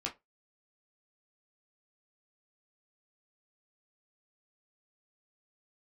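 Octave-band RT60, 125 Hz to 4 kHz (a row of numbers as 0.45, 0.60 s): 0.25, 0.20, 0.25, 0.20, 0.15, 0.15 s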